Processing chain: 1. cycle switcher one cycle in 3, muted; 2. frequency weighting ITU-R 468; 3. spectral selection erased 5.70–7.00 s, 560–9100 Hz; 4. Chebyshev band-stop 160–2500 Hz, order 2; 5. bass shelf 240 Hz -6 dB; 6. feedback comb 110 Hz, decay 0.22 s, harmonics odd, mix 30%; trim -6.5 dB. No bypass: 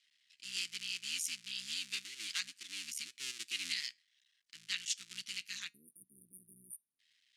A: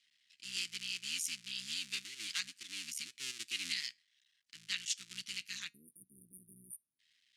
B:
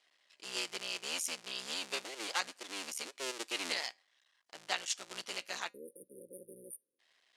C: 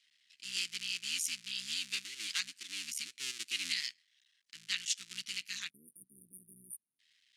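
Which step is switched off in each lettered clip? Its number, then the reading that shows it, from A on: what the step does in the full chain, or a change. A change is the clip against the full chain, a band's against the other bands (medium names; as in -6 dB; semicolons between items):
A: 5, 250 Hz band +3.0 dB; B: 4, 1 kHz band +18.5 dB; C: 6, loudness change +2.5 LU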